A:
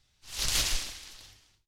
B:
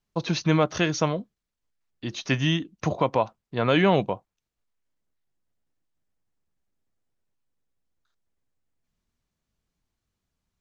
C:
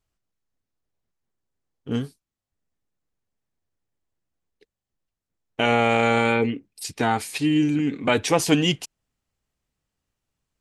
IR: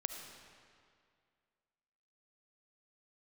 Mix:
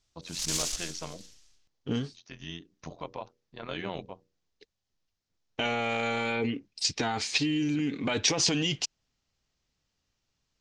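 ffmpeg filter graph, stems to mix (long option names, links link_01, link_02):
-filter_complex "[0:a]dynaudnorm=framelen=140:gausssize=3:maxgain=5dB,aeval=exprs='(tanh(11.2*val(0)+0.8)-tanh(0.8))/11.2':channel_layout=same,volume=-15dB,asplit=2[link_01][link_02];[link_02]volume=-7.5dB[link_03];[1:a]bandreject=frequency=60:width_type=h:width=6,bandreject=frequency=120:width_type=h:width=6,bandreject=frequency=180:width_type=h:width=6,bandreject=frequency=240:width_type=h:width=6,bandreject=frequency=300:width_type=h:width=6,bandreject=frequency=360:width_type=h:width=6,bandreject=frequency=420:width_type=h:width=6,bandreject=frequency=480:width_type=h:width=6,tremolo=f=87:d=0.857,volume=-13dB[link_04];[2:a]alimiter=limit=-16.5dB:level=0:latency=1:release=12,volume=0dB,asplit=2[link_05][link_06];[link_06]apad=whole_len=467631[link_07];[link_04][link_07]sidechaincompress=threshold=-36dB:ratio=8:attack=16:release=592[link_08];[link_08][link_05]amix=inputs=2:normalize=0,lowpass=frequency=5200:width=0.5412,lowpass=frequency=5200:width=1.3066,acompressor=threshold=-26dB:ratio=6,volume=0dB[link_09];[3:a]atrim=start_sample=2205[link_10];[link_03][link_10]afir=irnorm=-1:irlink=0[link_11];[link_01][link_09][link_11]amix=inputs=3:normalize=0,equalizer=frequency=6700:width_type=o:width=1.5:gain=14.5"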